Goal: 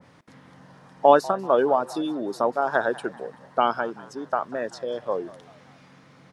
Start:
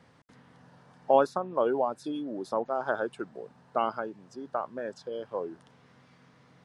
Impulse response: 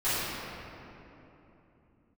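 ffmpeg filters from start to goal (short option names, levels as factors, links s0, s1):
-filter_complex "[0:a]asetrate=46305,aresample=44100,asplit=5[s0][s1][s2][s3][s4];[s1]adelay=192,afreqshift=82,volume=0.1[s5];[s2]adelay=384,afreqshift=164,volume=0.0479[s6];[s3]adelay=576,afreqshift=246,volume=0.0229[s7];[s4]adelay=768,afreqshift=328,volume=0.0111[s8];[s0][s5][s6][s7][s8]amix=inputs=5:normalize=0,adynamicequalizer=threshold=0.01:dfrequency=1700:dqfactor=0.7:tfrequency=1700:tqfactor=0.7:attack=5:release=100:ratio=0.375:range=1.5:mode=boostabove:tftype=highshelf,volume=2.11"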